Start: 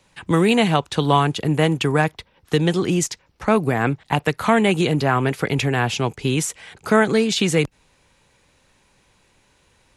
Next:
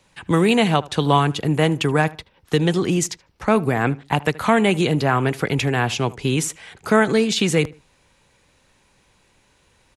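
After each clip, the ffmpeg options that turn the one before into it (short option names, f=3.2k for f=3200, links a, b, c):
-filter_complex "[0:a]asplit=2[a][b];[b]adelay=77,lowpass=f=2.4k:p=1,volume=-20dB,asplit=2[c][d];[d]adelay=77,lowpass=f=2.4k:p=1,volume=0.27[e];[a][c][e]amix=inputs=3:normalize=0"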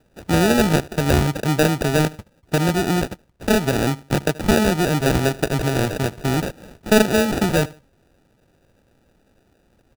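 -af "acrusher=samples=41:mix=1:aa=0.000001"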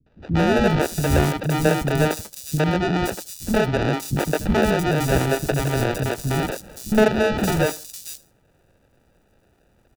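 -filter_complex "[0:a]acrossover=split=260|4700[a][b][c];[b]adelay=60[d];[c]adelay=520[e];[a][d][e]amix=inputs=3:normalize=0,acrossover=split=1100[f][g];[g]asoftclip=type=hard:threshold=-21.5dB[h];[f][h]amix=inputs=2:normalize=0"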